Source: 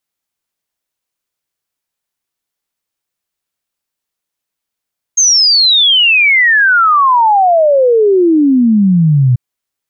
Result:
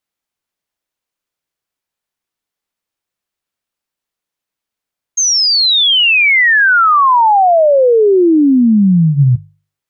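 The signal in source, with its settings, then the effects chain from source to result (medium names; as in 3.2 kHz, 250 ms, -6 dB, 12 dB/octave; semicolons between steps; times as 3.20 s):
log sweep 6.5 kHz -> 120 Hz 4.19 s -5.5 dBFS
treble shelf 5 kHz -6 dB; hum notches 50/100/150 Hz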